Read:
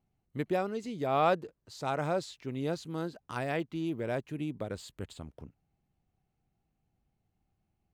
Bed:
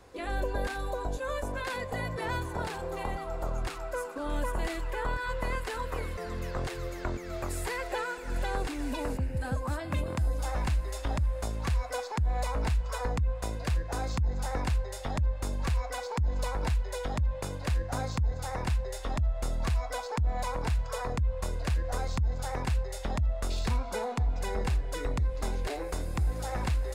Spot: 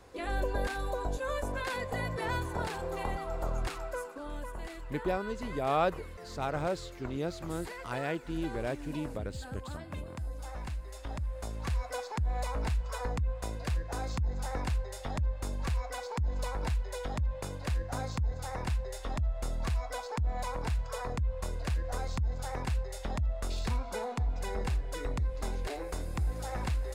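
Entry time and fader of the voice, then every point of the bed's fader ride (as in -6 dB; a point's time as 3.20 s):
4.55 s, -1.5 dB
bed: 3.78 s -0.5 dB
4.42 s -9.5 dB
10.87 s -9.5 dB
11.80 s -3 dB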